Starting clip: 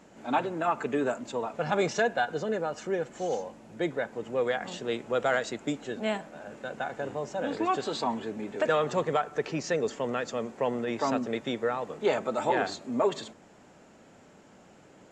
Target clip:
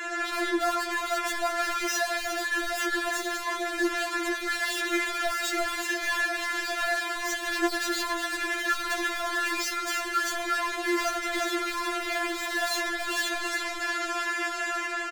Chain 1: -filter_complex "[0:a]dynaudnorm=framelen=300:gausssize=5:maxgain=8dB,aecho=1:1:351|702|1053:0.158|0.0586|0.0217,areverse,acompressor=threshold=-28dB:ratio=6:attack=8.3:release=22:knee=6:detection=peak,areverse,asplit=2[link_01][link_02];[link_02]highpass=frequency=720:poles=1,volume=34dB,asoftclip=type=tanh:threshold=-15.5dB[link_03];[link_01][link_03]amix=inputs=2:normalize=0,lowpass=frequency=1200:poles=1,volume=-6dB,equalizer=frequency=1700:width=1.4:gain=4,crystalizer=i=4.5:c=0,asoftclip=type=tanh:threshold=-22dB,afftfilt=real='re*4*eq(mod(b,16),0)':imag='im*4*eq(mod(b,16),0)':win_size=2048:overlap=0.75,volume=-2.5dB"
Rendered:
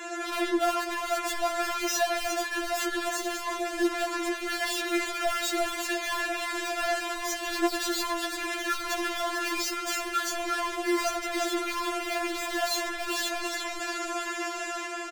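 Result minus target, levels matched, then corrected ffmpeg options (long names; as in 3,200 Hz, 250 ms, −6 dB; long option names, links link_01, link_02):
2,000 Hz band −3.0 dB
-filter_complex "[0:a]dynaudnorm=framelen=300:gausssize=5:maxgain=8dB,aecho=1:1:351|702|1053:0.158|0.0586|0.0217,areverse,acompressor=threshold=-28dB:ratio=6:attack=8.3:release=22:knee=6:detection=peak,areverse,asplit=2[link_01][link_02];[link_02]highpass=frequency=720:poles=1,volume=34dB,asoftclip=type=tanh:threshold=-15.5dB[link_03];[link_01][link_03]amix=inputs=2:normalize=0,lowpass=frequency=1200:poles=1,volume=-6dB,equalizer=frequency=1700:width=1.4:gain=14,crystalizer=i=4.5:c=0,asoftclip=type=tanh:threshold=-22dB,afftfilt=real='re*4*eq(mod(b,16),0)':imag='im*4*eq(mod(b,16),0)':win_size=2048:overlap=0.75,volume=-2.5dB"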